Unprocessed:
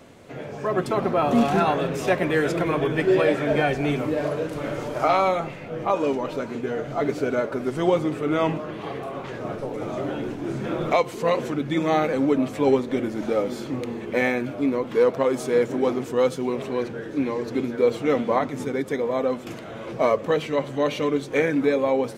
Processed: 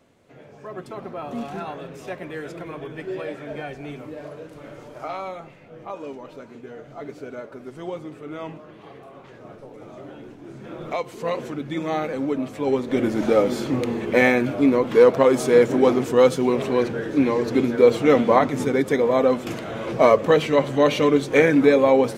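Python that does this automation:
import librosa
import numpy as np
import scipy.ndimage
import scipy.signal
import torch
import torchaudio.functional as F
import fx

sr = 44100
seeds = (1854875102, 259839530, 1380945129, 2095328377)

y = fx.gain(x, sr, db=fx.line((10.52, -11.5), (11.23, -4.0), (12.66, -4.0), (13.07, 5.5)))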